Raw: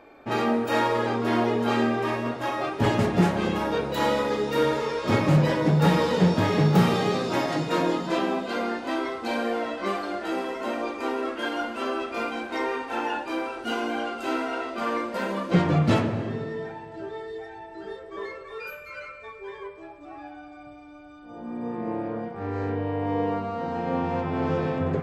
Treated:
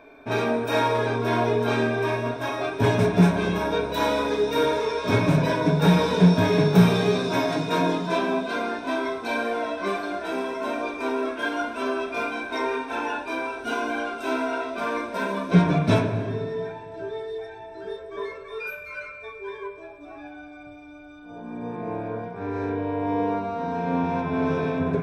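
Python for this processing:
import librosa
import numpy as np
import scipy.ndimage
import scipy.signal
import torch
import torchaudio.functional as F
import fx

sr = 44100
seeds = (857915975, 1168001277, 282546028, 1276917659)

y = fx.ripple_eq(x, sr, per_octave=1.6, db=11)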